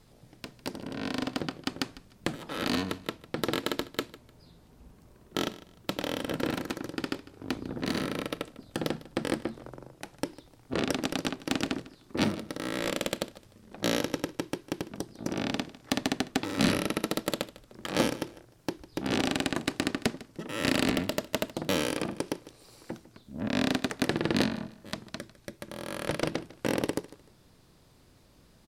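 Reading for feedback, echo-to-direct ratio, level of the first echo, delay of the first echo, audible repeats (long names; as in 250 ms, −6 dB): 26%, −18.0 dB, −18.5 dB, 151 ms, 2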